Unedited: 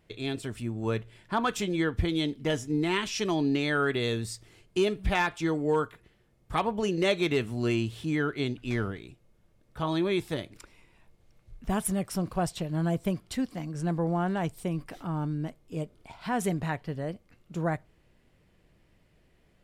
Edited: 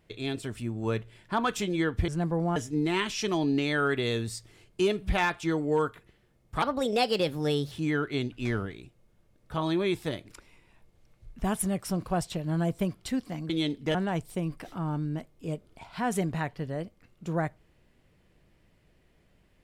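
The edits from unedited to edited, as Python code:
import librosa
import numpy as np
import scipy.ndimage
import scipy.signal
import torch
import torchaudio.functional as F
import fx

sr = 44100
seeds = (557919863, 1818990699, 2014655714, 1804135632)

y = fx.edit(x, sr, fx.swap(start_s=2.08, length_s=0.45, other_s=13.75, other_length_s=0.48),
    fx.speed_span(start_s=6.59, length_s=1.38, speed=1.26), tone=tone)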